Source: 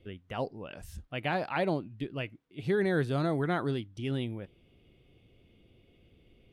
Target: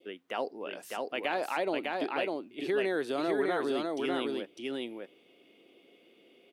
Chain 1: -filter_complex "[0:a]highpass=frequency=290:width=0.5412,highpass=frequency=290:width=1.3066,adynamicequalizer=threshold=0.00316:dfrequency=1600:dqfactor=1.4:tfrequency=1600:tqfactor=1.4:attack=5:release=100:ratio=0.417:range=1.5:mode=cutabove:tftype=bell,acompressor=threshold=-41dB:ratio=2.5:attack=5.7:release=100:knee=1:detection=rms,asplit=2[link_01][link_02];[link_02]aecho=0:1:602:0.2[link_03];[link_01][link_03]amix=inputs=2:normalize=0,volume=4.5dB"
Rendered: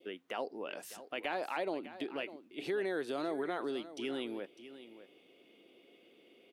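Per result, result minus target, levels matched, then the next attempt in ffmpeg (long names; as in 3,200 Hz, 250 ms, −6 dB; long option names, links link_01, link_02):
echo-to-direct −11.5 dB; downward compressor: peak gain reduction +5 dB
-filter_complex "[0:a]highpass=frequency=290:width=0.5412,highpass=frequency=290:width=1.3066,adynamicequalizer=threshold=0.00316:dfrequency=1600:dqfactor=1.4:tfrequency=1600:tqfactor=1.4:attack=5:release=100:ratio=0.417:range=1.5:mode=cutabove:tftype=bell,acompressor=threshold=-41dB:ratio=2.5:attack=5.7:release=100:knee=1:detection=rms,asplit=2[link_01][link_02];[link_02]aecho=0:1:602:0.75[link_03];[link_01][link_03]amix=inputs=2:normalize=0,volume=4.5dB"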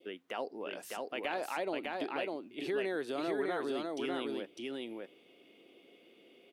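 downward compressor: peak gain reduction +5 dB
-filter_complex "[0:a]highpass=frequency=290:width=0.5412,highpass=frequency=290:width=1.3066,adynamicequalizer=threshold=0.00316:dfrequency=1600:dqfactor=1.4:tfrequency=1600:tqfactor=1.4:attack=5:release=100:ratio=0.417:range=1.5:mode=cutabove:tftype=bell,acompressor=threshold=-33dB:ratio=2.5:attack=5.7:release=100:knee=1:detection=rms,asplit=2[link_01][link_02];[link_02]aecho=0:1:602:0.75[link_03];[link_01][link_03]amix=inputs=2:normalize=0,volume=4.5dB"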